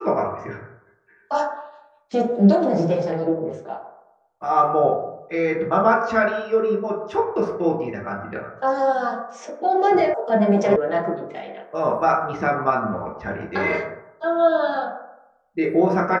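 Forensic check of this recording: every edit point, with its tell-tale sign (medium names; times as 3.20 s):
10.14 s: sound stops dead
10.76 s: sound stops dead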